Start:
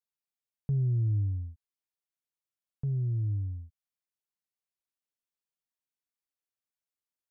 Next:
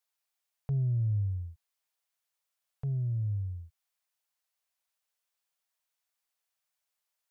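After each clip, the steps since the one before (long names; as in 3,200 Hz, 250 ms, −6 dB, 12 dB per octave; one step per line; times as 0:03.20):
drawn EQ curve 140 Hz 0 dB, 290 Hz −20 dB, 420 Hz +2 dB, 670 Hz +10 dB
level −1.5 dB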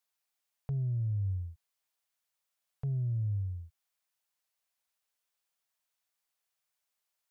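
brickwall limiter −28 dBFS, peak gain reduction 3.5 dB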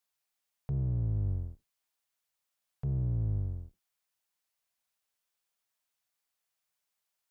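sub-octave generator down 1 octave, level −5 dB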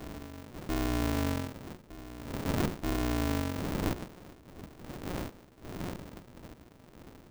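wind on the microphone 170 Hz −40 dBFS
backwards echo 931 ms −15 dB
ring modulator with a square carrier 180 Hz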